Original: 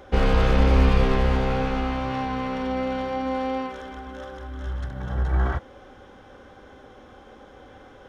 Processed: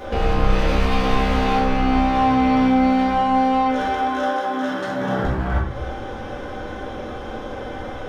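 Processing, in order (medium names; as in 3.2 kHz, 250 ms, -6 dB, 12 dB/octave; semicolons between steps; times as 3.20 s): 0.52–1.58 s: tilt EQ +1.5 dB/octave; 3.84–5.24 s: high-pass 330 Hz -> 150 Hz 24 dB/octave; compression 4:1, threshold -33 dBFS, peak gain reduction 15.5 dB; hard clipper -29 dBFS, distortion -19 dB; simulated room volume 160 m³, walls mixed, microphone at 1.9 m; trim +8 dB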